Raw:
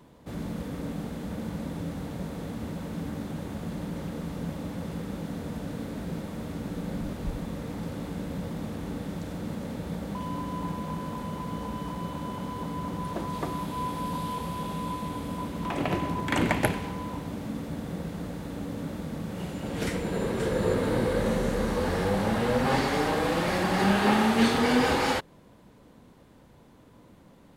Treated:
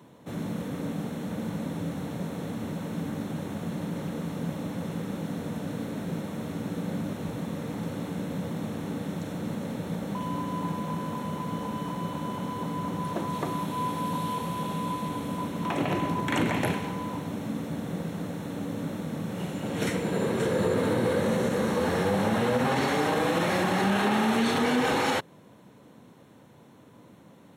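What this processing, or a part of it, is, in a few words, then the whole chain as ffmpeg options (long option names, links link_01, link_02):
PA system with an anti-feedback notch: -af "highpass=frequency=100:width=0.5412,highpass=frequency=100:width=1.3066,asuperstop=centerf=4800:order=8:qfactor=7.9,alimiter=limit=-18.5dB:level=0:latency=1:release=30,volume=2dB"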